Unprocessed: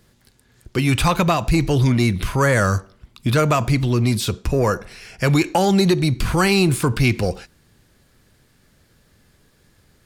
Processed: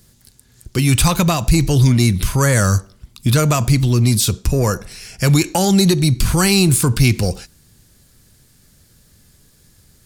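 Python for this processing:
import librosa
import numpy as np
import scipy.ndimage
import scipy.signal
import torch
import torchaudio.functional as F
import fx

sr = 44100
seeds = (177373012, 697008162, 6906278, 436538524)

y = fx.bass_treble(x, sr, bass_db=7, treble_db=13)
y = F.gain(torch.from_numpy(y), -1.5).numpy()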